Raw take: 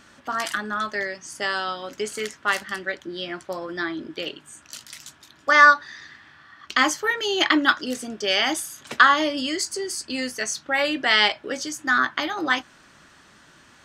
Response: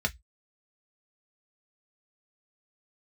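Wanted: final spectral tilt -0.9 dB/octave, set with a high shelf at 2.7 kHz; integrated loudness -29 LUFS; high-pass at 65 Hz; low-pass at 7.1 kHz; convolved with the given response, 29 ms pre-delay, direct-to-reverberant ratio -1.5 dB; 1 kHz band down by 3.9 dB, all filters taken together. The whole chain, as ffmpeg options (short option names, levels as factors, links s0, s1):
-filter_complex "[0:a]highpass=65,lowpass=7100,equalizer=f=1000:t=o:g=-6.5,highshelf=f=2700:g=6,asplit=2[s0][s1];[1:a]atrim=start_sample=2205,adelay=29[s2];[s1][s2]afir=irnorm=-1:irlink=0,volume=0.473[s3];[s0][s3]amix=inputs=2:normalize=0,volume=0.299"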